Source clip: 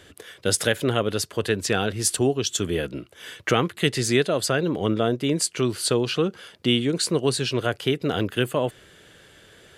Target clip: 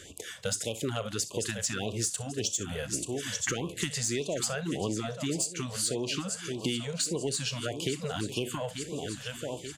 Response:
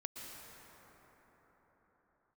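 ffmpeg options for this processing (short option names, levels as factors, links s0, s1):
-filter_complex "[0:a]equalizer=f=7000:w=2:g=12,asplit=2[s0][s1];[s1]aecho=0:1:885|1770|2655|3540:0.237|0.0925|0.0361|0.0141[s2];[s0][s2]amix=inputs=2:normalize=0,alimiter=limit=0.422:level=0:latency=1:release=481,asplit=2[s3][s4];[s4]aecho=0:1:35|62:0.15|0.133[s5];[s3][s5]amix=inputs=2:normalize=0,asoftclip=type=tanh:threshold=0.299,acompressor=threshold=0.0398:ratio=6,afftfilt=real='re*(1-between(b*sr/1024,290*pow(1700/290,0.5+0.5*sin(2*PI*1.7*pts/sr))/1.41,290*pow(1700/290,0.5+0.5*sin(2*PI*1.7*pts/sr))*1.41))':imag='im*(1-between(b*sr/1024,290*pow(1700/290,0.5+0.5*sin(2*PI*1.7*pts/sr))/1.41,290*pow(1700/290,0.5+0.5*sin(2*PI*1.7*pts/sr))*1.41))':win_size=1024:overlap=0.75"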